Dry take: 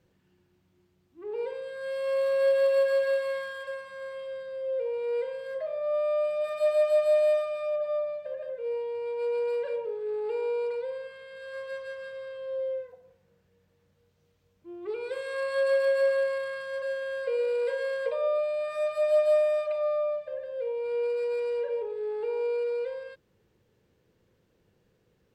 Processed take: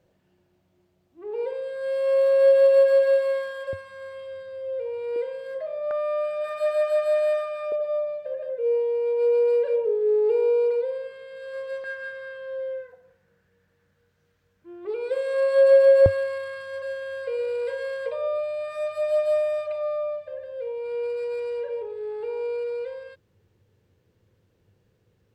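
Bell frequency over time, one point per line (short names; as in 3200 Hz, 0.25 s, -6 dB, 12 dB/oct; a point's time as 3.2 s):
bell +11 dB 0.58 oct
630 Hz
from 3.73 s 95 Hz
from 5.16 s 340 Hz
from 5.91 s 1500 Hz
from 7.72 s 430 Hz
from 11.84 s 1600 Hz
from 14.85 s 580 Hz
from 16.06 s 97 Hz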